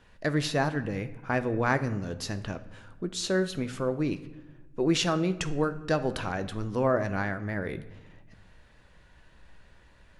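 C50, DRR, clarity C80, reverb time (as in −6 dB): 14.0 dB, 9.5 dB, 17.0 dB, 1.1 s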